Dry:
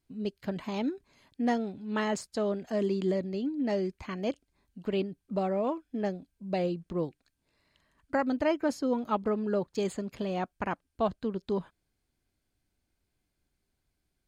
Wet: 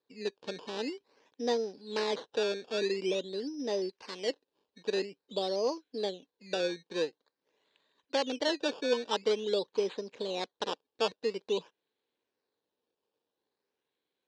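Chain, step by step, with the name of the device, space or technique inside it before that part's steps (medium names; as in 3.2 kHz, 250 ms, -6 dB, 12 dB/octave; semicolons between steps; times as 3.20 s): circuit-bent sampling toy (decimation with a swept rate 15×, swing 100% 0.48 Hz; cabinet simulation 410–5700 Hz, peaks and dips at 460 Hz +9 dB, 680 Hz -7 dB, 1.3 kHz -10 dB, 2.1 kHz -6 dB, 4 kHz +7 dB); 3.89–4.30 s: tilt EQ +1.5 dB/octave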